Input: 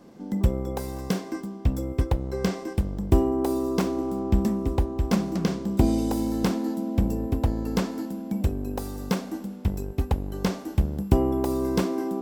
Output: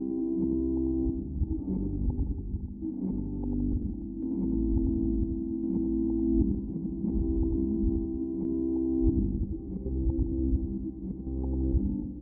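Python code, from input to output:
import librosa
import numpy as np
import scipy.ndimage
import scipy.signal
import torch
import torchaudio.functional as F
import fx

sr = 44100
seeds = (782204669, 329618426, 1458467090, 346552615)

p1 = np.flip(x).copy()
p2 = fx.formant_cascade(p1, sr, vowel='u')
p3 = fx.chopper(p2, sr, hz=0.71, depth_pct=65, duty_pct=65)
p4 = fx.tilt_eq(p3, sr, slope=-2.0)
p5 = fx.over_compress(p4, sr, threshold_db=-33.0, ratio=-0.5)
p6 = p4 + F.gain(torch.from_numpy(p5), -0.5).numpy()
p7 = fx.peak_eq(p6, sr, hz=670.0, db=-10.5, octaves=2.6)
p8 = p7 + fx.echo_multitap(p7, sr, ms=(80, 94, 167, 282, 503, 581), db=(-17.5, -5.5, -11.5, -13.0, -19.5, -18.0), dry=0)
y = fx.add_hum(p8, sr, base_hz=50, snr_db=23)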